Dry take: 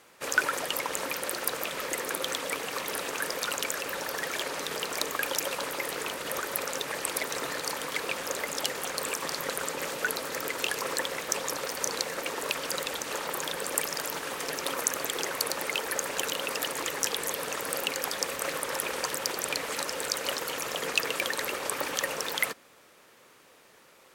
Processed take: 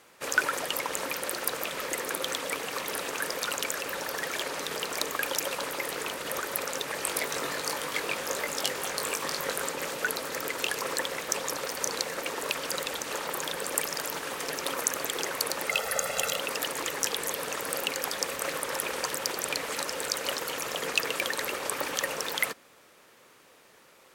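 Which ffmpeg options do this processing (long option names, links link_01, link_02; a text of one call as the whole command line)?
ffmpeg -i in.wav -filter_complex "[0:a]asettb=1/sr,asplit=3[link_01][link_02][link_03];[link_01]atrim=end=6.974[link_04];[link_02]atrim=start=6.97:end=9.7,asetpts=PTS-STARTPTS,afade=type=in:duration=0.004:curve=qsin,afade=type=out:start_time=2.726:duration=0.004:curve=qsin,asplit=2[link_05][link_06];[link_06]adelay=20,volume=-6dB[link_07];[link_05][link_07]amix=inputs=2:normalize=0,atrim=end_sample=120393[link_08];[link_03]atrim=start=9.696[link_09];[link_04][link_08]acrossfade=duration=0.004:curve1=hsin:curve2=qsin[link_10];[link_10][link_09]acrossfade=duration=0.004:curve1=qsin:curve2=hsin,asettb=1/sr,asplit=3[link_11][link_12][link_13];[link_11]atrim=end=15.694[link_14];[link_12]atrim=start=15.69:end=16.39,asetpts=PTS-STARTPTS,afade=type=in:duration=0.004:curve=qsin,afade=type=out:start_time=0.696:duration=0.004:curve=qsin,aecho=1:1:1.5:0.78,atrim=end_sample=30870[link_15];[link_13]atrim=start=16.386[link_16];[link_14][link_15]acrossfade=duration=0.004:curve1=hsin:curve2=qsin[link_17];[link_17][link_16]acrossfade=duration=0.004:curve1=qsin:curve2=hsin" out.wav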